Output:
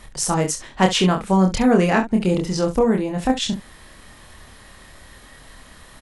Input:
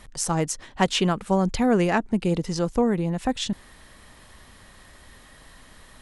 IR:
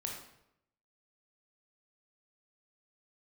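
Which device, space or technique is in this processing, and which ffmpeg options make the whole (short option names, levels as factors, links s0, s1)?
slapback doubling: -filter_complex "[0:a]asplit=3[s0][s1][s2];[s1]adelay=27,volume=0.668[s3];[s2]adelay=68,volume=0.251[s4];[s0][s3][s4]amix=inputs=3:normalize=0,volume=1.41"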